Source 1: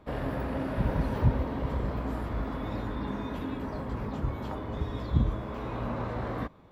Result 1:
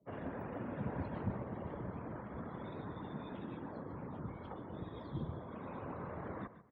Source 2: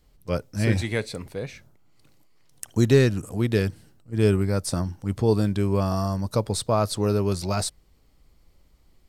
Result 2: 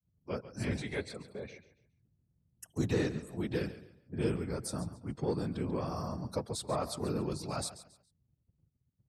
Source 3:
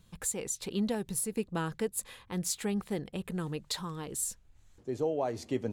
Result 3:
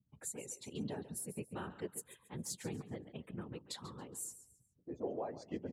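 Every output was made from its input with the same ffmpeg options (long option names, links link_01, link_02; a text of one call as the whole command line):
ffmpeg -i in.wav -filter_complex "[0:a]afreqshift=-21,asplit=2[link_01][link_02];[link_02]asoftclip=type=hard:threshold=-20dB,volume=-5.5dB[link_03];[link_01][link_03]amix=inputs=2:normalize=0,afftdn=noise_reduction=29:noise_floor=-46,aecho=1:1:139|278|417:0.2|0.0599|0.018,afftfilt=real='hypot(re,im)*cos(2*PI*random(0))':imag='hypot(re,im)*sin(2*PI*random(1))':win_size=512:overlap=0.75,highpass=100,volume=-7.5dB" out.wav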